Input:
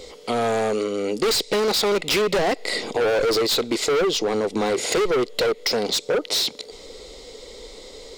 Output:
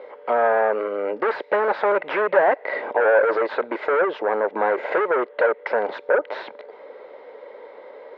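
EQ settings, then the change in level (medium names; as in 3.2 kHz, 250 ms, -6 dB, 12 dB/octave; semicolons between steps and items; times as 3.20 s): cabinet simulation 440–2000 Hz, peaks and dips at 600 Hz +3 dB, 920 Hz +9 dB, 1.6 kHz +10 dB; peaking EQ 580 Hz +7 dB 0.26 oct; 0.0 dB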